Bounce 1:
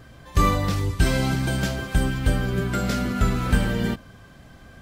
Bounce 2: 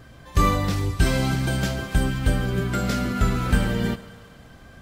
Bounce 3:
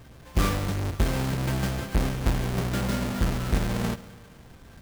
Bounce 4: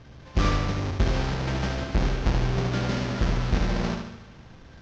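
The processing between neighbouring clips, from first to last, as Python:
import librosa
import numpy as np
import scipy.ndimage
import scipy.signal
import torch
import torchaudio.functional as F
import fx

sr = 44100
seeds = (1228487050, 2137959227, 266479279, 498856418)

y1 = fx.echo_thinned(x, sr, ms=139, feedback_pct=66, hz=200.0, wet_db=-18.0)
y2 = fx.halfwave_hold(y1, sr)
y2 = fx.rider(y2, sr, range_db=10, speed_s=0.5)
y2 = y2 * 10.0 ** (-8.5 / 20.0)
y3 = scipy.signal.sosfilt(scipy.signal.butter(8, 6300.0, 'lowpass', fs=sr, output='sos'), y2)
y3 = fx.echo_feedback(y3, sr, ms=74, feedback_pct=49, wet_db=-5)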